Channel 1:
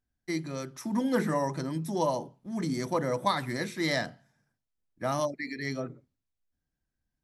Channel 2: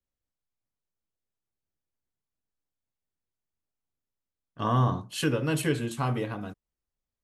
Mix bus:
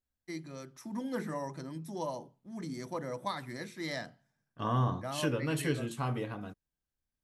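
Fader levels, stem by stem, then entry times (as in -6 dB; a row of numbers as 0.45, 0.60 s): -9.0, -5.5 dB; 0.00, 0.00 s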